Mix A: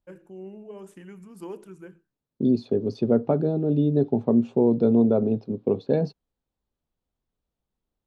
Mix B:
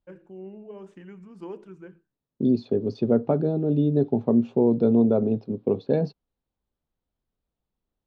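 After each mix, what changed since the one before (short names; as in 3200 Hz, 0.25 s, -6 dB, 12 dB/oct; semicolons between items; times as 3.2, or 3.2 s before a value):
second voice: add high shelf 4300 Hz +7 dB; master: add air absorption 140 m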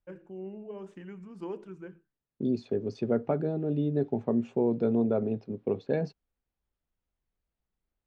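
second voice: add graphic EQ 125/250/500/1000/2000/4000/8000 Hz -6/-6/-4/-4/+6/-9/+9 dB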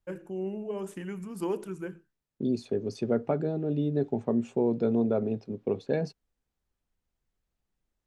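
first voice +6.5 dB; master: remove air absorption 140 m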